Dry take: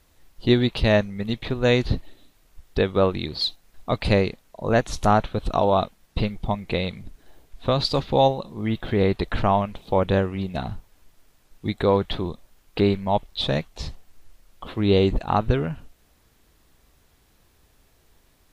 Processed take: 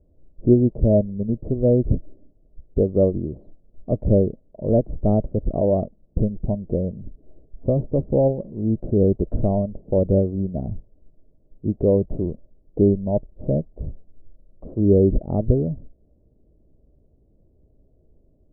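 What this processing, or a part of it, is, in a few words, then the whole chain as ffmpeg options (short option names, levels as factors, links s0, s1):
under water: -af "lowpass=f=440:w=0.5412,lowpass=f=440:w=1.3066,equalizer=f=610:t=o:w=0.37:g=11,volume=1.5"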